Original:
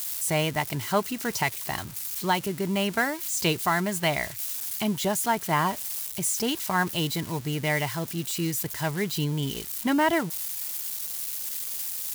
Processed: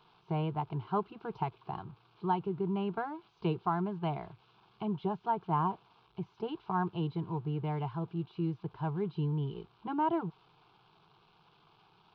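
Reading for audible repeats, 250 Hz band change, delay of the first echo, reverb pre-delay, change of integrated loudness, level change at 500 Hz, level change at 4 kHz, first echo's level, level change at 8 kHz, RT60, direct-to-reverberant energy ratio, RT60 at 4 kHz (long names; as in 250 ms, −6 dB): no echo audible, −6.5 dB, no echo audible, no reverb audible, −8.5 dB, −8.0 dB, −21.5 dB, no echo audible, below −40 dB, no reverb audible, no reverb audible, no reverb audible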